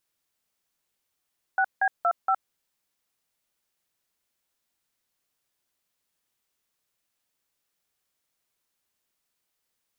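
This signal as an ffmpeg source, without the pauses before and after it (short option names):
-f lavfi -i "aevalsrc='0.0794*clip(min(mod(t,0.234),0.065-mod(t,0.234))/0.002,0,1)*(eq(floor(t/0.234),0)*(sin(2*PI*770*mod(t,0.234))+sin(2*PI*1477*mod(t,0.234)))+eq(floor(t/0.234),1)*(sin(2*PI*770*mod(t,0.234))+sin(2*PI*1633*mod(t,0.234)))+eq(floor(t/0.234),2)*(sin(2*PI*697*mod(t,0.234))+sin(2*PI*1336*mod(t,0.234)))+eq(floor(t/0.234),3)*(sin(2*PI*770*mod(t,0.234))+sin(2*PI*1336*mod(t,0.234))))':d=0.936:s=44100"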